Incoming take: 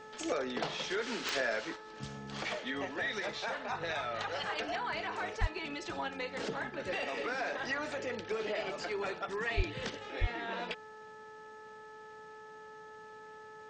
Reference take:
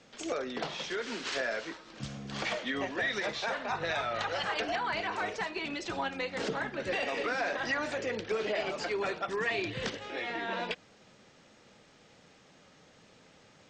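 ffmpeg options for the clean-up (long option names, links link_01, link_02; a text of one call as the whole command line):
ffmpeg -i in.wav -filter_complex "[0:a]adeclick=threshold=4,bandreject=frequency=432.6:width_type=h:width=4,bandreject=frequency=865.2:width_type=h:width=4,bandreject=frequency=1297.8:width_type=h:width=4,bandreject=frequency=1730.4:width_type=h:width=4,asplit=3[link_01][link_02][link_03];[link_01]afade=type=out:start_time=5.4:duration=0.02[link_04];[link_02]highpass=frequency=140:width=0.5412,highpass=frequency=140:width=1.3066,afade=type=in:start_time=5.4:duration=0.02,afade=type=out:start_time=5.52:duration=0.02[link_05];[link_03]afade=type=in:start_time=5.52:duration=0.02[link_06];[link_04][link_05][link_06]amix=inputs=3:normalize=0,asplit=3[link_07][link_08][link_09];[link_07]afade=type=out:start_time=9.56:duration=0.02[link_10];[link_08]highpass=frequency=140:width=0.5412,highpass=frequency=140:width=1.3066,afade=type=in:start_time=9.56:duration=0.02,afade=type=out:start_time=9.68:duration=0.02[link_11];[link_09]afade=type=in:start_time=9.68:duration=0.02[link_12];[link_10][link_11][link_12]amix=inputs=3:normalize=0,asplit=3[link_13][link_14][link_15];[link_13]afade=type=out:start_time=10.2:duration=0.02[link_16];[link_14]highpass=frequency=140:width=0.5412,highpass=frequency=140:width=1.3066,afade=type=in:start_time=10.2:duration=0.02,afade=type=out:start_time=10.32:duration=0.02[link_17];[link_15]afade=type=in:start_time=10.32:duration=0.02[link_18];[link_16][link_17][link_18]amix=inputs=3:normalize=0,asetnsamples=nb_out_samples=441:pad=0,asendcmd='1.76 volume volume 4dB',volume=0dB" out.wav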